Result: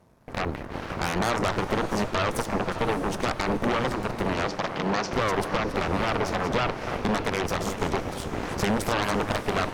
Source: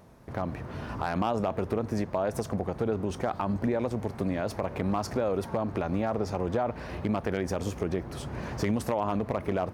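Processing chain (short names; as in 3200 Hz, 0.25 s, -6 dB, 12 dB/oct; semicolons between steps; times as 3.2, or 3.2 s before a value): reverse delay 0.199 s, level -10 dB; added harmonics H 3 -16 dB, 8 -8 dB, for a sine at -15 dBFS; 4.45–5.13 elliptic band-pass 140–6100 Hz; on a send: diffused feedback echo 0.596 s, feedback 48%, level -12 dB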